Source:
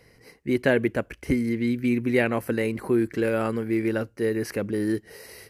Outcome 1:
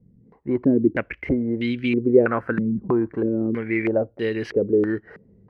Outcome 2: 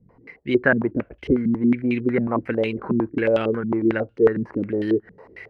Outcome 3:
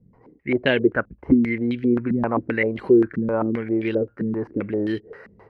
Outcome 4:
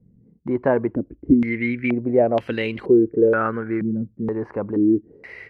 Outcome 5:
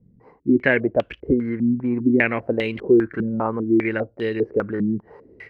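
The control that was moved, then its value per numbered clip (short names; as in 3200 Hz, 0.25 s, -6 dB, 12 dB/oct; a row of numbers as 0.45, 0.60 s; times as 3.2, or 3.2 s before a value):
stepped low-pass, rate: 3.1, 11, 7.6, 2.1, 5 Hz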